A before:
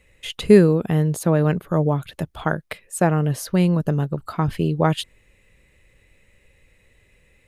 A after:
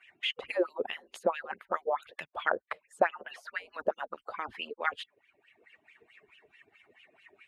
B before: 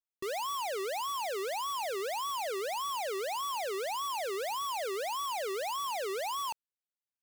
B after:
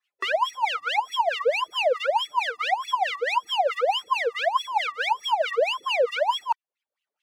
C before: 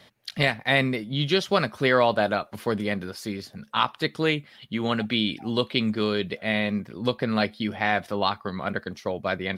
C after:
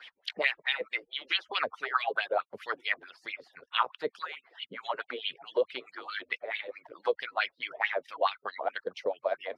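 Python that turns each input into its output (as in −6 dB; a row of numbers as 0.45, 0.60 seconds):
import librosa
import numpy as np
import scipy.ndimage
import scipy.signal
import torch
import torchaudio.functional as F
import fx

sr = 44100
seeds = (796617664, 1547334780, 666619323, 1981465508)

y = fx.hpss_only(x, sr, part='percussive')
y = fx.low_shelf(y, sr, hz=310.0, db=-9.0)
y = fx.wah_lfo(y, sr, hz=4.6, low_hz=450.0, high_hz=3000.0, q=4.2)
y = fx.low_shelf(y, sr, hz=92.0, db=11.5)
y = fx.band_squash(y, sr, depth_pct=40)
y = y * 10.0 ** (-12 / 20.0) / np.max(np.abs(y))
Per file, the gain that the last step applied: +6.5, +21.5, +6.5 decibels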